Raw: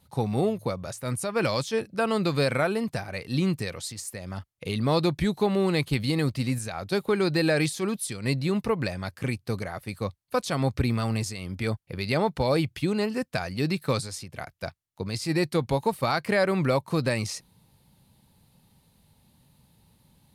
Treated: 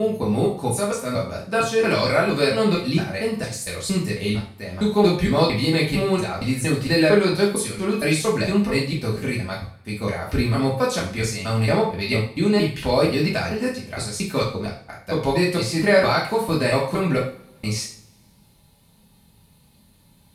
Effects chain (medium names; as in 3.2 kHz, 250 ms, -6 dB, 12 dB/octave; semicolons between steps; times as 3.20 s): slices played last to first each 229 ms, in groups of 3; two-slope reverb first 0.44 s, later 1.7 s, from -26 dB, DRR -5 dB